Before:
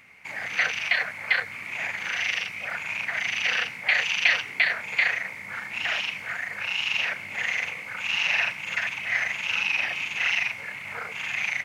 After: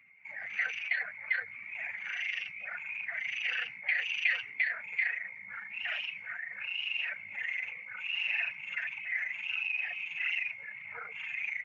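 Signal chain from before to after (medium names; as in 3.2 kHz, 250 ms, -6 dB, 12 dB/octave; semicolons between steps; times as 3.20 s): spectral contrast enhancement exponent 1.8; trim -8 dB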